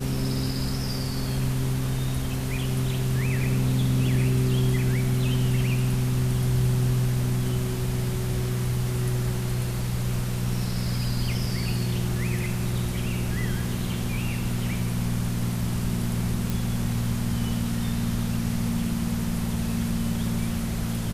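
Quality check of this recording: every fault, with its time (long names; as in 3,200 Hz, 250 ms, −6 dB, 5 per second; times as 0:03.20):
0:16.50: click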